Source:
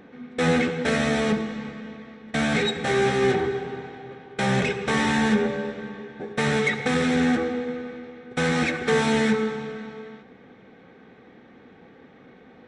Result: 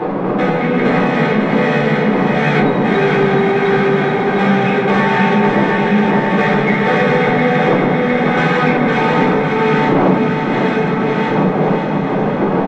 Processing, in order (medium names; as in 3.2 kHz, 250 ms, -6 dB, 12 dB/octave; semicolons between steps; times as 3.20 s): backward echo that repeats 353 ms, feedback 75%, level -3 dB; wind noise 470 Hz -19 dBFS; simulated room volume 410 m³, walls furnished, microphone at 3.9 m; compression 5:1, threshold -19 dBFS, peak gain reduction 25 dB; tape spacing loss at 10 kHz 24 dB; on a send: feedback delay 550 ms, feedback 56%, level -5.5 dB; on the sum: overdrive pedal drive 15 dB, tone 4.3 kHz, clips at -3 dBFS; resonant low shelf 110 Hz -13 dB, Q 3; trim +3.5 dB